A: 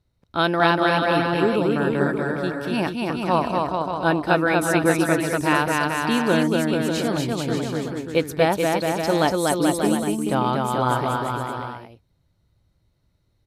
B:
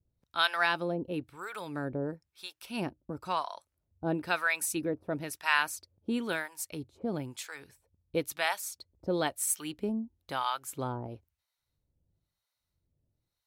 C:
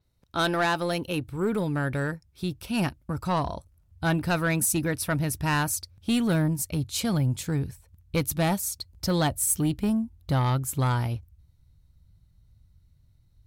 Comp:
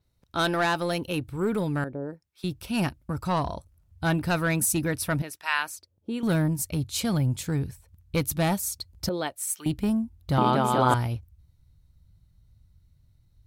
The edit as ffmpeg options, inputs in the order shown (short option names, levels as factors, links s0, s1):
-filter_complex "[1:a]asplit=3[s0][s1][s2];[2:a]asplit=5[s3][s4][s5][s6][s7];[s3]atrim=end=1.842[s8];[s0]atrim=start=1.838:end=2.442[s9];[s4]atrim=start=2.438:end=5.222[s10];[s1]atrim=start=5.218:end=6.232[s11];[s5]atrim=start=6.228:end=9.092[s12];[s2]atrim=start=9.088:end=9.662[s13];[s6]atrim=start=9.658:end=10.382[s14];[0:a]atrim=start=10.378:end=10.942[s15];[s7]atrim=start=10.938[s16];[s8][s9]acrossfade=d=0.004:c1=hsin:c2=hsin[s17];[s17][s10]acrossfade=d=0.004:c1=hsin:c2=hsin[s18];[s18][s11]acrossfade=d=0.004:c1=hsin:c2=hsin[s19];[s19][s12]acrossfade=d=0.004:c1=hsin:c2=hsin[s20];[s20][s13]acrossfade=d=0.004:c1=hsin:c2=hsin[s21];[s21][s14]acrossfade=d=0.004:c1=hsin:c2=hsin[s22];[s22][s15]acrossfade=d=0.004:c1=hsin:c2=hsin[s23];[s23][s16]acrossfade=d=0.004:c1=hsin:c2=hsin"